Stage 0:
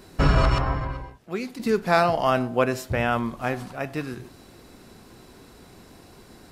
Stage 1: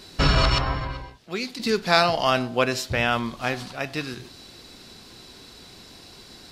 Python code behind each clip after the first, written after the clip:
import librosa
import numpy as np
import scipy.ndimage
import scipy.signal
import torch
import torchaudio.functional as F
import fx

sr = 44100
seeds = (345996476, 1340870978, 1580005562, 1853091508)

y = fx.peak_eq(x, sr, hz=4200.0, db=14.0, octaves=1.6)
y = F.gain(torch.from_numpy(y), -1.5).numpy()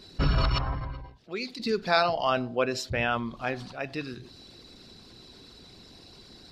y = fx.envelope_sharpen(x, sr, power=1.5)
y = F.gain(torch.from_numpy(y), -4.5).numpy()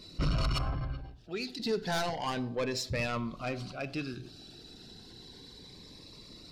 y = 10.0 ** (-24.5 / 20.0) * np.tanh(x / 10.0 ** (-24.5 / 20.0))
y = fx.room_shoebox(y, sr, seeds[0], volume_m3=2100.0, walls='furnished', distance_m=0.46)
y = fx.notch_cascade(y, sr, direction='rising', hz=0.31)